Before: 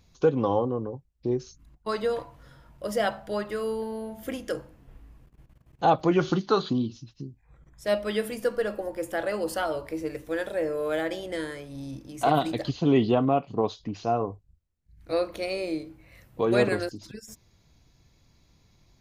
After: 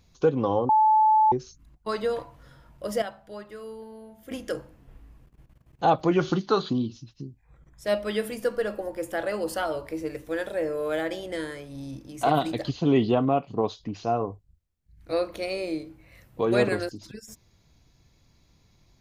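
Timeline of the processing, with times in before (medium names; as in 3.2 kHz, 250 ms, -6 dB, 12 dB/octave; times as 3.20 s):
0.69–1.32 s: bleep 867 Hz -15.5 dBFS
3.02–4.31 s: gain -10 dB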